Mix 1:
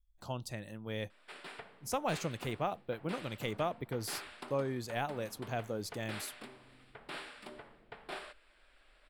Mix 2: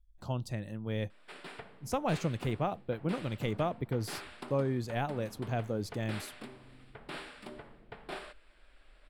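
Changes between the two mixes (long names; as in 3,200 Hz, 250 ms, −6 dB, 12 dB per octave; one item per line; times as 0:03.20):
speech: add high-shelf EQ 6,000 Hz −5.5 dB
master: add low-shelf EQ 330 Hz +8.5 dB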